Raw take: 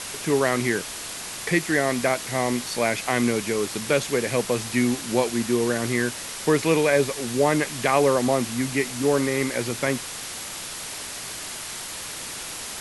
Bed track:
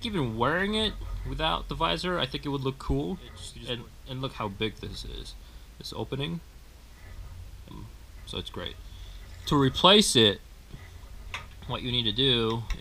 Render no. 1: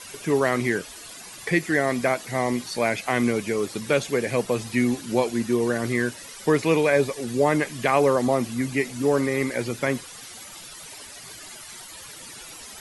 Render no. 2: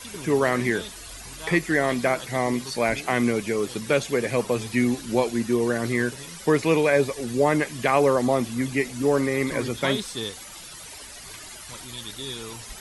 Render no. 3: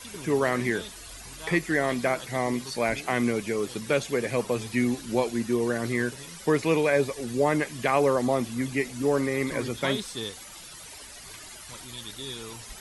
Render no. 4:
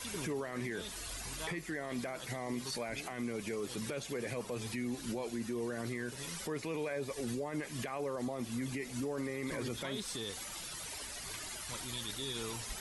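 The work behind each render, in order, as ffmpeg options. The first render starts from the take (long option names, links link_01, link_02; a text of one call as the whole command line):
ffmpeg -i in.wav -af "afftdn=noise_reduction=13:noise_floor=-35" out.wav
ffmpeg -i in.wav -i bed.wav -filter_complex "[1:a]volume=-11.5dB[link_01];[0:a][link_01]amix=inputs=2:normalize=0" out.wav
ffmpeg -i in.wav -af "volume=-3dB" out.wav
ffmpeg -i in.wav -af "acompressor=threshold=-32dB:ratio=4,alimiter=level_in=5.5dB:limit=-24dB:level=0:latency=1:release=11,volume=-5.5dB" out.wav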